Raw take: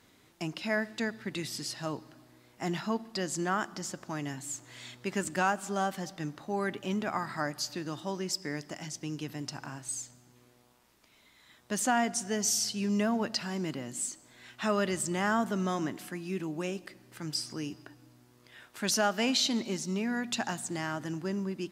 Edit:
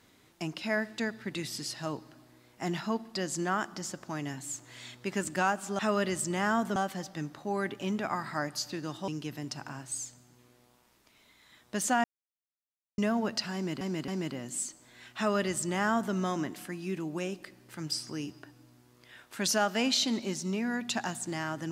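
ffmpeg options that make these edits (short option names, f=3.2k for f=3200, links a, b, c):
-filter_complex "[0:a]asplit=8[a][b][c][d][e][f][g][h];[a]atrim=end=5.792[i];[b]atrim=start=14.598:end=15.572[j];[c]atrim=start=5.788:end=8.112[k];[d]atrim=start=9.048:end=12.01,asetpts=PTS-STARTPTS,afade=t=out:st=2.958:d=0.004:c=hsin[l];[e]atrim=start=12.01:end=12.95,asetpts=PTS-STARTPTS,volume=0[m];[f]atrim=start=12.95:end=13.782,asetpts=PTS-STARTPTS,afade=t=in:d=0.004:c=hsin[n];[g]atrim=start=13.508:end=13.782[o];[h]atrim=start=13.508[p];[i][j]acrossfade=d=0.004:c1=hsin:c2=hsin[q];[q][k]acrossfade=d=0.004:c1=hsin:c2=hsin[r];[l][m][n]concat=n=3:v=0:a=1[s];[r][s]acrossfade=d=0.004:c1=hsin:c2=hsin[t];[t][o]acrossfade=d=0.004:c1=hsin:c2=hsin[u];[u][p]acrossfade=d=0.004:c1=hsin:c2=hsin"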